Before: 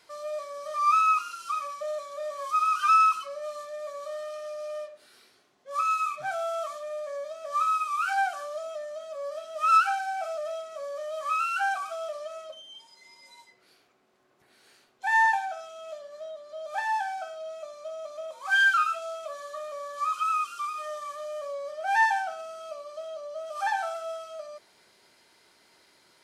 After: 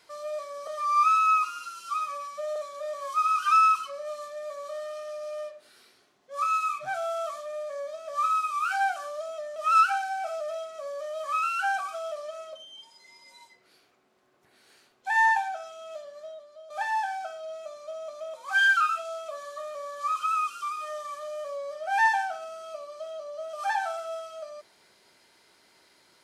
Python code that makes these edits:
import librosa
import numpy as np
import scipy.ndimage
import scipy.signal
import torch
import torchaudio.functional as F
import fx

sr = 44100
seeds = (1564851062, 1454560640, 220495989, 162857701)

y = fx.edit(x, sr, fx.stretch_span(start_s=0.67, length_s=1.26, factor=1.5),
    fx.cut(start_s=8.93, length_s=0.6),
    fx.fade_out_to(start_s=16.08, length_s=0.59, floor_db=-11.5), tone=tone)